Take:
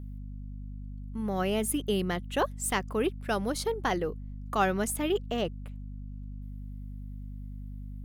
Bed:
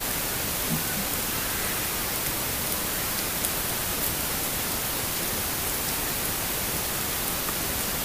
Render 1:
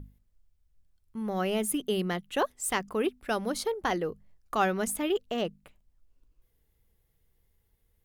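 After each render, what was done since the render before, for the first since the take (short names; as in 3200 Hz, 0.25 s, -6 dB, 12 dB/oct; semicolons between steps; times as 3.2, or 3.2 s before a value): notches 50/100/150/200/250 Hz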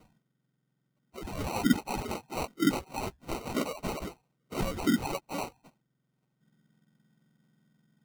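spectrum mirrored in octaves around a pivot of 1600 Hz; sample-and-hold 26×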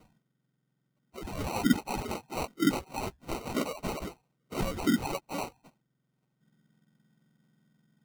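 nothing audible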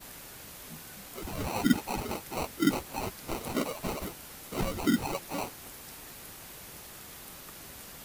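add bed -18.5 dB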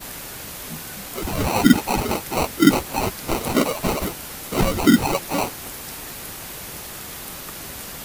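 gain +12 dB; limiter -1 dBFS, peak gain reduction 2 dB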